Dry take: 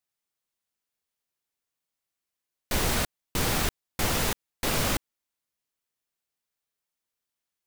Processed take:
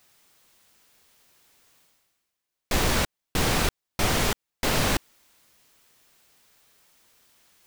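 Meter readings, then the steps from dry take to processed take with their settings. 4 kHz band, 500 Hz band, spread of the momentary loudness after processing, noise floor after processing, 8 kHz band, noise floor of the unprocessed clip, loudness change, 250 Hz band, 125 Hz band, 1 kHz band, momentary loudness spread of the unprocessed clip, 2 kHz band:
+3.0 dB, +3.5 dB, 6 LU, -84 dBFS, +1.0 dB, under -85 dBFS, +2.5 dB, +3.5 dB, +3.0 dB, +3.5 dB, 6 LU, +3.5 dB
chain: reverse; upward compressor, threshold -44 dBFS; reverse; peaking EQ 12 kHz -3 dB 1.1 oct; loudspeaker Doppler distortion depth 0.63 ms; trim +3.5 dB

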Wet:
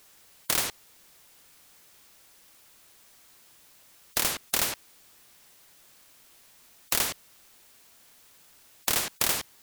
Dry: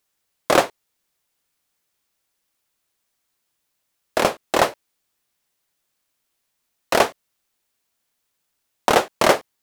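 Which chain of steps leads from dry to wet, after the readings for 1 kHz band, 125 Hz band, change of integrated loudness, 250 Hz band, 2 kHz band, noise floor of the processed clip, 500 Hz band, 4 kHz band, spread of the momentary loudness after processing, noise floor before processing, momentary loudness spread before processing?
-17.0 dB, -9.0 dB, -7.0 dB, -15.5 dB, -9.5 dB, -58 dBFS, -21.0 dB, -3.5 dB, 8 LU, -75 dBFS, 8 LU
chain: spectrum-flattening compressor 10:1

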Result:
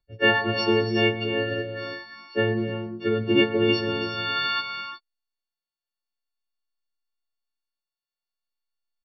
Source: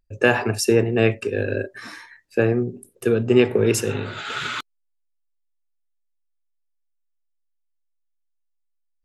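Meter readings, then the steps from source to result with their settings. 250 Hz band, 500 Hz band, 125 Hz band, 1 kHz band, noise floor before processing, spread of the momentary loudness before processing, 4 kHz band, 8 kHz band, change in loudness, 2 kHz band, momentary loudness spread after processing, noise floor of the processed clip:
-2.5 dB, -4.5 dB, -5.5 dB, +1.5 dB, -72 dBFS, 12 LU, +5.0 dB, under -25 dB, -3.0 dB, +0.5 dB, 13 LU, under -85 dBFS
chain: partials quantised in pitch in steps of 4 st; gated-style reverb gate 380 ms rising, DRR 6.5 dB; resampled via 11.025 kHz; trim -5 dB

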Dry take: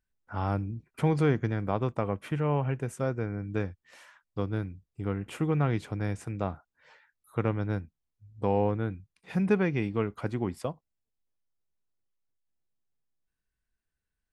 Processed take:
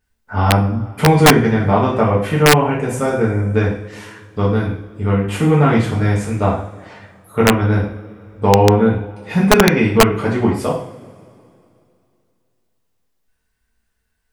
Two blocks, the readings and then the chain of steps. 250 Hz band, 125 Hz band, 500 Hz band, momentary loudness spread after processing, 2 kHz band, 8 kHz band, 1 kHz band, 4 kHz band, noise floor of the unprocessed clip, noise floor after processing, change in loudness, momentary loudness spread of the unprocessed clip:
+15.0 dB, +14.0 dB, +15.5 dB, 13 LU, +19.5 dB, +26.5 dB, +18.0 dB, +26.0 dB, -85 dBFS, -68 dBFS, +15.5 dB, 11 LU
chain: two-slope reverb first 0.52 s, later 2.6 s, from -21 dB, DRR -6.5 dB; integer overflow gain 10 dB; trim +9 dB

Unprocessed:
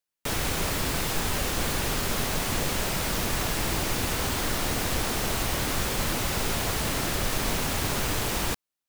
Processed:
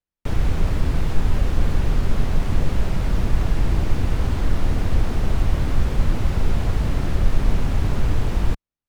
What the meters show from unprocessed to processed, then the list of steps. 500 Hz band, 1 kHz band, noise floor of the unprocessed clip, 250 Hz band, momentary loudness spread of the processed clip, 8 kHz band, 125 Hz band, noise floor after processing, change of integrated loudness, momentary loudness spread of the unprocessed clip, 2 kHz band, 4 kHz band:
0.0 dB, -3.0 dB, under -85 dBFS, +4.0 dB, 1 LU, -14.5 dB, +10.5 dB, under -85 dBFS, +3.0 dB, 0 LU, -5.5 dB, -9.0 dB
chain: RIAA curve playback; trim -3 dB

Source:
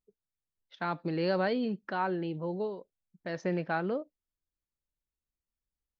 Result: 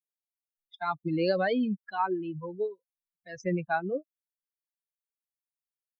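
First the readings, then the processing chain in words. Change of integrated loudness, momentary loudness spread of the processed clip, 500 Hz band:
+2.0 dB, 10 LU, +1.5 dB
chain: expander on every frequency bin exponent 3; trim +7 dB

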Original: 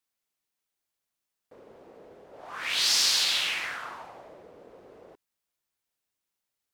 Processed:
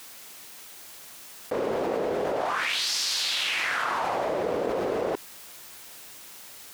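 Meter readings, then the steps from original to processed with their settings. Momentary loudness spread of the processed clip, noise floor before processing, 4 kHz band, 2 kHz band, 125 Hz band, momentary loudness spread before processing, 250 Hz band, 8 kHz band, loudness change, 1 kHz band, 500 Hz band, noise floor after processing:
18 LU, under -85 dBFS, -2.0 dB, +4.0 dB, no reading, 19 LU, +19.0 dB, -2.5 dB, -2.5 dB, +12.0 dB, +20.5 dB, -46 dBFS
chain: bass shelf 130 Hz -7.5 dB; peak limiter -19 dBFS, peak gain reduction 7 dB; level flattener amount 100%

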